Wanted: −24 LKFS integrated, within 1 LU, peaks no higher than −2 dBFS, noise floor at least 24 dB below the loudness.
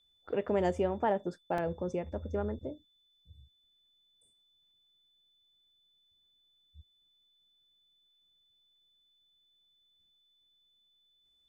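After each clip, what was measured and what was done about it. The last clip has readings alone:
number of dropouts 1; longest dropout 2.3 ms; interfering tone 3,500 Hz; level of the tone −68 dBFS; integrated loudness −34.0 LKFS; sample peak −19.0 dBFS; target loudness −24.0 LKFS
→ repair the gap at 0:01.58, 2.3 ms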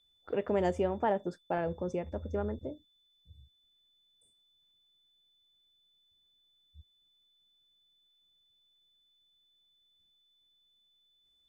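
number of dropouts 0; interfering tone 3,500 Hz; level of the tone −68 dBFS
→ notch filter 3,500 Hz, Q 30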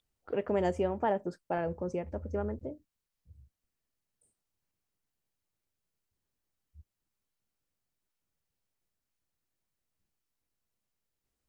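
interfering tone none found; integrated loudness −34.0 LKFS; sample peak −19.0 dBFS; target loudness −24.0 LKFS
→ level +10 dB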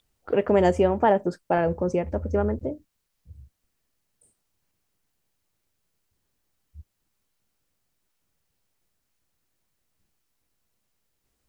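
integrated loudness −24.0 LKFS; sample peak −9.0 dBFS; background noise floor −77 dBFS

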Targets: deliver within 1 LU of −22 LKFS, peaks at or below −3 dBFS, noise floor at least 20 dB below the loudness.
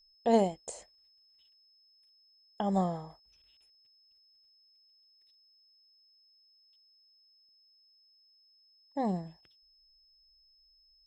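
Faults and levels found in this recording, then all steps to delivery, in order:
interfering tone 5,200 Hz; level of the tone −63 dBFS; integrated loudness −32.0 LKFS; sample peak −14.5 dBFS; target loudness −22.0 LKFS
→ notch filter 5,200 Hz, Q 30
level +10 dB

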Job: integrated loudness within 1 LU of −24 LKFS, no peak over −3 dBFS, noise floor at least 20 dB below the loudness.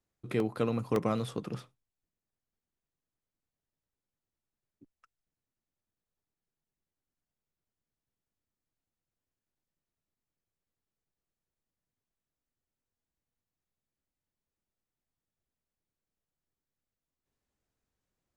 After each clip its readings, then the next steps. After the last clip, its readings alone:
number of dropouts 2; longest dropout 1.6 ms; integrated loudness −33.0 LKFS; sample peak −15.0 dBFS; target loudness −24.0 LKFS
→ repair the gap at 0:00.40/0:00.96, 1.6 ms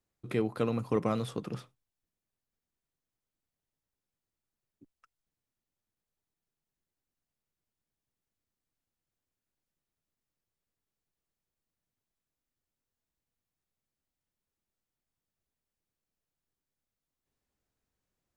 number of dropouts 0; integrated loudness −33.0 LKFS; sample peak −15.0 dBFS; target loudness −24.0 LKFS
→ level +9 dB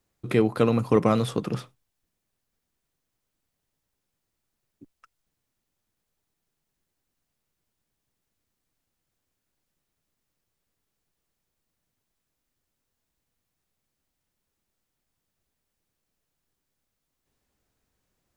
integrated loudness −24.0 LKFS; sample peak −6.0 dBFS; background noise floor −82 dBFS

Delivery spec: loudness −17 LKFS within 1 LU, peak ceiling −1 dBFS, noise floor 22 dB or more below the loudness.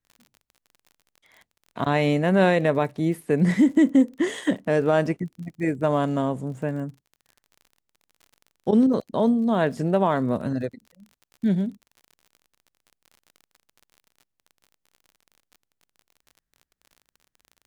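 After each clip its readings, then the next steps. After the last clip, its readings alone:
crackle rate 41 per second; integrated loudness −23.0 LKFS; sample peak −8.5 dBFS; target loudness −17.0 LKFS
→ click removal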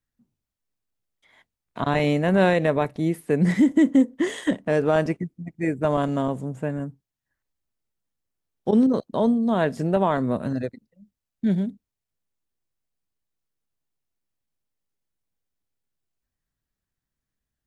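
crackle rate 0 per second; integrated loudness −23.0 LKFS; sample peak −8.5 dBFS; target loudness −17.0 LKFS
→ level +6 dB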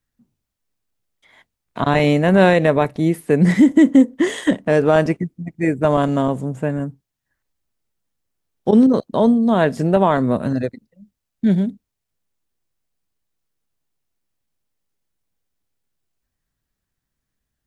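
integrated loudness −17.0 LKFS; sample peak −2.5 dBFS; background noise floor −80 dBFS

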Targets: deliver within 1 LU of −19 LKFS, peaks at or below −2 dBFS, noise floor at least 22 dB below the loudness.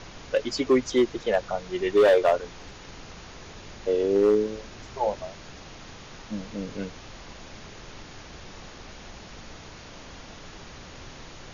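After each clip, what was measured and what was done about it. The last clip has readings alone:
share of clipped samples 0.5%; peaks flattened at −13.5 dBFS; background noise floor −45 dBFS; target noise floor −47 dBFS; integrated loudness −25.0 LKFS; sample peak −13.5 dBFS; target loudness −19.0 LKFS
→ clipped peaks rebuilt −13.5 dBFS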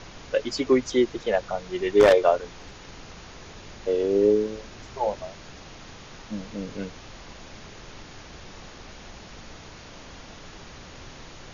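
share of clipped samples 0.0%; background noise floor −45 dBFS; target noise floor −46 dBFS
→ noise reduction from a noise print 6 dB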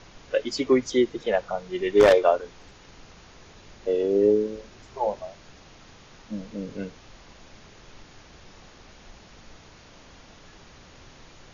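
background noise floor −51 dBFS; integrated loudness −24.0 LKFS; sample peak −4.5 dBFS; target loudness −19.0 LKFS
→ level +5 dB
brickwall limiter −2 dBFS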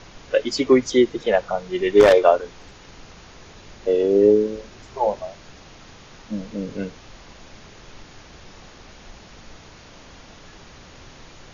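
integrated loudness −19.5 LKFS; sample peak −2.0 dBFS; background noise floor −46 dBFS

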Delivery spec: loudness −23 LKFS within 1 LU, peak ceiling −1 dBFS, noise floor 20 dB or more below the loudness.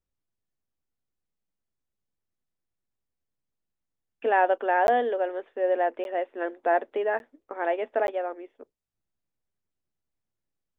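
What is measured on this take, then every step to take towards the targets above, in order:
number of dropouts 4; longest dropout 11 ms; integrated loudness −26.5 LKFS; sample peak −10.0 dBFS; target loudness −23.0 LKFS
→ repair the gap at 0:04.87/0:06.04/0:07.19/0:08.07, 11 ms
level +3.5 dB

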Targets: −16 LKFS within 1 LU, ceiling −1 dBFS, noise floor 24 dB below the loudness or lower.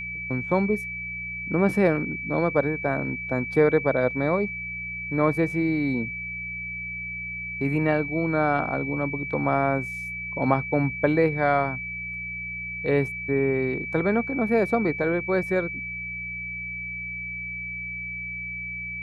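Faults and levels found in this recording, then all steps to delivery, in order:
mains hum 60 Hz; hum harmonics up to 180 Hz; level of the hum −41 dBFS; interfering tone 2,300 Hz; level of the tone −31 dBFS; integrated loudness −25.5 LKFS; sample peak −6.0 dBFS; target loudness −16.0 LKFS
→ hum removal 60 Hz, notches 3
notch filter 2,300 Hz, Q 30
level +9.5 dB
brickwall limiter −1 dBFS

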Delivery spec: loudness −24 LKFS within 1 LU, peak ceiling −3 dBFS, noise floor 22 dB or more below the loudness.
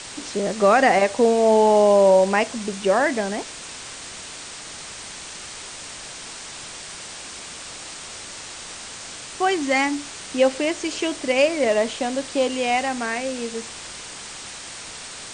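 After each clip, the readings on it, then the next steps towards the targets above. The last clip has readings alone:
background noise floor −37 dBFS; target noise floor −42 dBFS; integrated loudness −20.0 LKFS; sample peak −5.5 dBFS; target loudness −24.0 LKFS
→ broadband denoise 6 dB, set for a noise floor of −37 dBFS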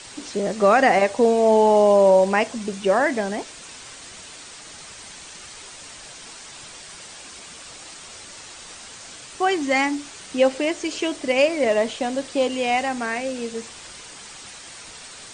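background noise floor −41 dBFS; target noise floor −42 dBFS
→ broadband denoise 6 dB, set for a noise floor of −41 dBFS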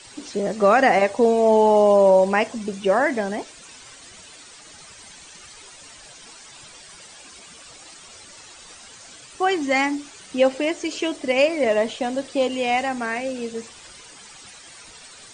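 background noise floor −45 dBFS; integrated loudness −20.5 LKFS; sample peak −5.5 dBFS; target loudness −24.0 LKFS
→ level −3.5 dB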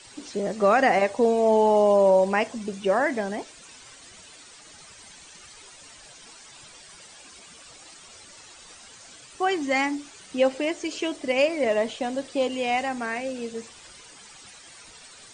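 integrated loudness −24.0 LKFS; sample peak −9.0 dBFS; background noise floor −48 dBFS

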